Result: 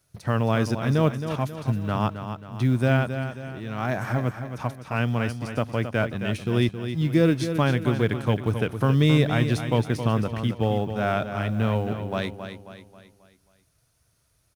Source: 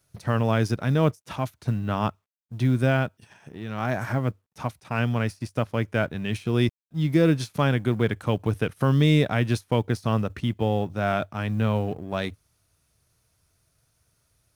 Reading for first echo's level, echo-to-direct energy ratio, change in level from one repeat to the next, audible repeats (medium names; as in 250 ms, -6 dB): -9.0 dB, -8.0 dB, -7.0 dB, 4